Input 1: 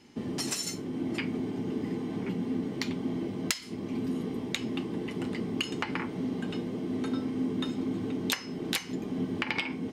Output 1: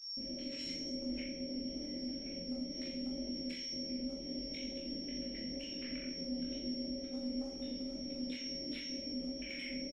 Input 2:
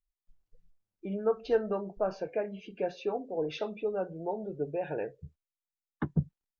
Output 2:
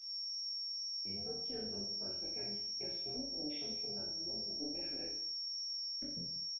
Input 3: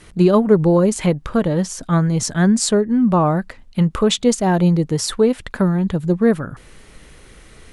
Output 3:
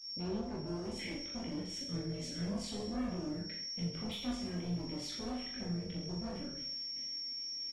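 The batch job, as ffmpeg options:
-filter_complex "[0:a]agate=range=-33dB:threshold=-34dB:ratio=3:detection=peak,asplit=3[link_01][link_02][link_03];[link_01]bandpass=frequency=270:width_type=q:width=8,volume=0dB[link_04];[link_02]bandpass=frequency=2290:width_type=q:width=8,volume=-6dB[link_05];[link_03]bandpass=frequency=3010:width_type=q:width=8,volume=-9dB[link_06];[link_04][link_05][link_06]amix=inputs=3:normalize=0,aeval=exprs='val(0)+0.00355*sin(2*PI*5500*n/s)':channel_layout=same,asoftclip=type=hard:threshold=-29dB,tremolo=f=290:d=0.667,alimiter=level_in=16.5dB:limit=-24dB:level=0:latency=1:release=90,volume=-16.5dB,flanger=delay=16.5:depth=6.2:speed=2.1,asplit=2[link_07][link_08];[link_08]adelay=24,volume=-5dB[link_09];[link_07][link_09]amix=inputs=2:normalize=0,asplit=2[link_10][link_11];[link_11]aecho=0:1:40|84|132.4|185.6|244.2:0.631|0.398|0.251|0.158|0.1[link_12];[link_10][link_12]amix=inputs=2:normalize=0,volume=7dB" -ar 48000 -c:a libopus -b:a 24k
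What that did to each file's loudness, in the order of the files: −8.0, −4.5, −22.0 LU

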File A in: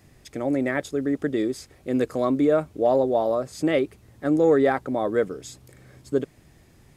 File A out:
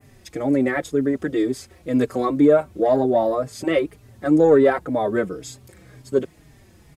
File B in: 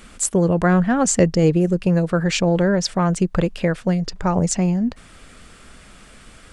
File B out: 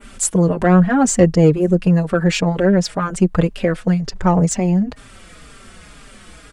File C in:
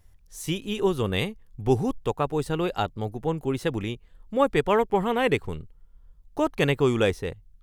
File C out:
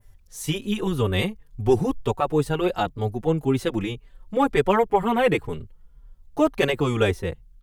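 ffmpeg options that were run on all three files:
-filter_complex "[0:a]acontrast=36,adynamicequalizer=threshold=0.0112:dfrequency=5100:dqfactor=0.82:tfrequency=5100:tqfactor=0.82:attack=5:release=100:ratio=0.375:range=2.5:mode=cutabove:tftype=bell,asplit=2[link_01][link_02];[link_02]adelay=4.5,afreqshift=-2[link_03];[link_01][link_03]amix=inputs=2:normalize=1,volume=1dB"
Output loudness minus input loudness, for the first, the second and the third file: +3.5, +3.0, +2.5 LU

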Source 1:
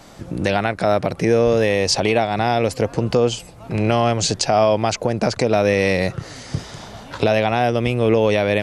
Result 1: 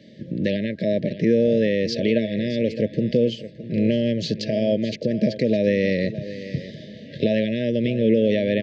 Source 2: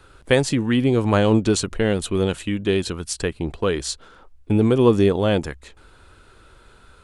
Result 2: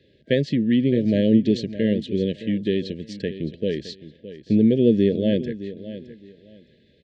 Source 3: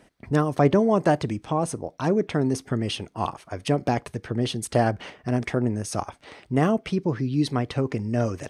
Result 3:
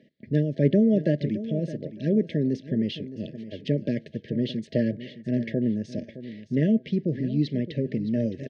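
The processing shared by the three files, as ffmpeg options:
-af "highpass=130,equalizer=frequency=150:width_type=q:width=4:gain=5,equalizer=frequency=220:width_type=q:width=4:gain=7,equalizer=frequency=780:width_type=q:width=4:gain=-6,equalizer=frequency=1500:width_type=q:width=4:gain=-8,equalizer=frequency=2500:width_type=q:width=4:gain=-6,lowpass=frequency=4100:width=0.5412,lowpass=frequency=4100:width=1.3066,aecho=1:1:615|1230:0.2|0.0439,afftfilt=real='re*(1-between(b*sr/4096,650,1600))':imag='im*(1-between(b*sr/4096,650,1600))':win_size=4096:overlap=0.75,volume=-3dB"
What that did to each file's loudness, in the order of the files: −3.5, −1.5, −1.5 LU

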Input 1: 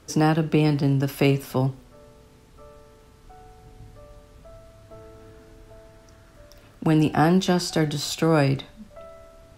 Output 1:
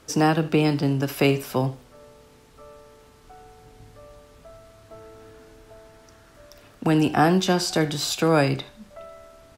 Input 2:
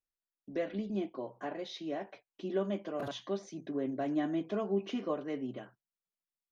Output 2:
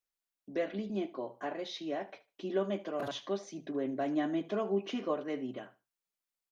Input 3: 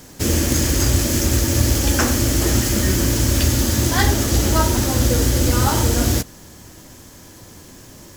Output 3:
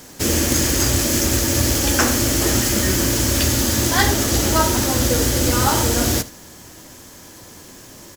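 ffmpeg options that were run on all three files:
-af "lowshelf=frequency=210:gain=-7.5,aecho=1:1:75|150:0.119|0.0238,volume=2.5dB"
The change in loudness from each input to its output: 0.0, +0.5, +0.5 LU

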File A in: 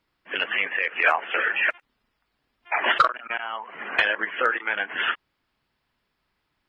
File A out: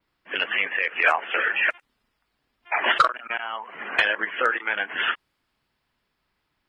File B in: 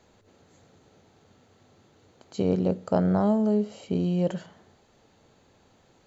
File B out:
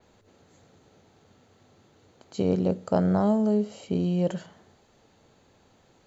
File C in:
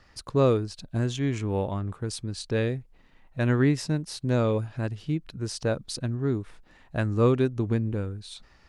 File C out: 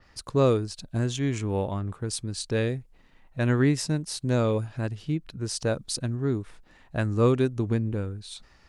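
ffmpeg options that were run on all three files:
-af "adynamicequalizer=threshold=0.00355:dfrequency=8800:dqfactor=0.76:tfrequency=8800:tqfactor=0.76:attack=5:release=100:ratio=0.375:range=3.5:mode=boostabove:tftype=bell"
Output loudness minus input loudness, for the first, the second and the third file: +0.5, 0.0, 0.0 LU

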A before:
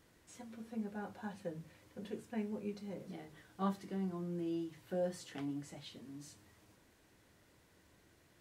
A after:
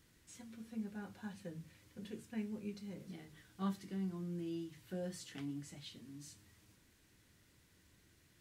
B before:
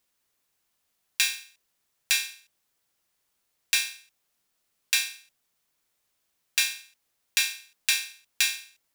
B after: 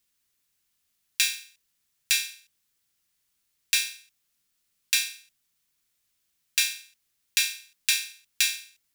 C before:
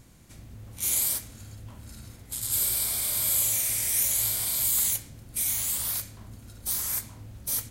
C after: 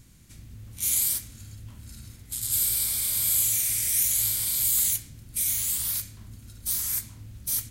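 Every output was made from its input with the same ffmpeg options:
-af "equalizer=frequency=670:width=0.65:gain=-11,volume=1.5dB"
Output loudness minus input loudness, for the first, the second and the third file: −3.0, +0.5, +1.5 LU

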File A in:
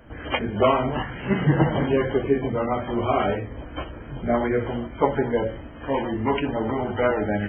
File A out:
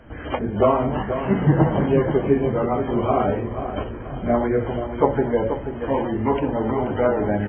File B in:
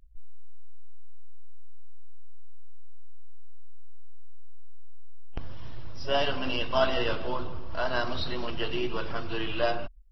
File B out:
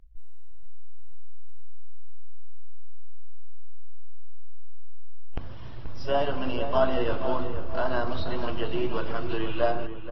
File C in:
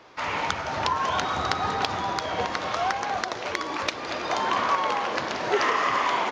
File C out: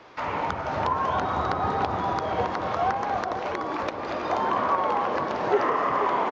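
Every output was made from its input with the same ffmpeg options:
-filter_complex "[0:a]highshelf=frequency=5800:gain=-10.5,acrossover=split=1300[link_01][link_02];[link_02]acompressor=threshold=-42dB:ratio=6[link_03];[link_01][link_03]amix=inputs=2:normalize=0,asplit=2[link_04][link_05];[link_05]adelay=482,lowpass=frequency=1700:poles=1,volume=-8.5dB,asplit=2[link_06][link_07];[link_07]adelay=482,lowpass=frequency=1700:poles=1,volume=0.42,asplit=2[link_08][link_09];[link_09]adelay=482,lowpass=frequency=1700:poles=1,volume=0.42,asplit=2[link_10][link_11];[link_11]adelay=482,lowpass=frequency=1700:poles=1,volume=0.42,asplit=2[link_12][link_13];[link_13]adelay=482,lowpass=frequency=1700:poles=1,volume=0.42[link_14];[link_04][link_06][link_08][link_10][link_12][link_14]amix=inputs=6:normalize=0,volume=2.5dB"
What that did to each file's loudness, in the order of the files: +2.0, +1.0, 0.0 LU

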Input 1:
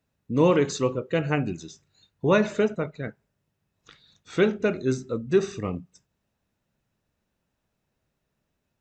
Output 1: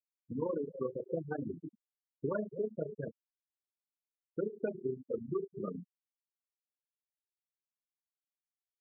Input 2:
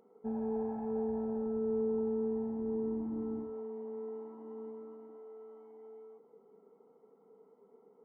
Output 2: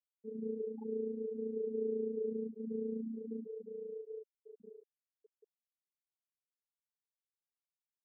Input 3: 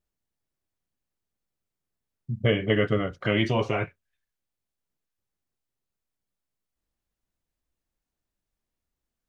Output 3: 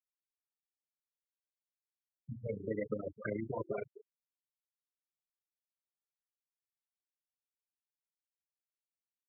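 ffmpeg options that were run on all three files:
-af "flanger=delay=4.7:depth=8.7:regen=-30:speed=0.52:shape=sinusoidal,asoftclip=type=hard:threshold=-20.5dB,highshelf=frequency=2200:gain=-4.5,aecho=1:1:262:0.15,acompressor=threshold=-32dB:ratio=16,tremolo=f=28:d=0.571,bandreject=frequency=60:width_type=h:width=6,bandreject=frequency=120:width_type=h:width=6,bandreject=frequency=180:width_type=h:width=6,bandreject=frequency=240:width_type=h:width=6,bandreject=frequency=300:width_type=h:width=6,bandreject=frequency=360:width_type=h:width=6,afftfilt=real='re*gte(hypot(re,im),0.0316)':imag='im*gte(hypot(re,im),0.0316)':win_size=1024:overlap=0.75,highpass=frequency=250:poles=1,volume=5dB"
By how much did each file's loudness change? −14.0, −3.5, −15.0 LU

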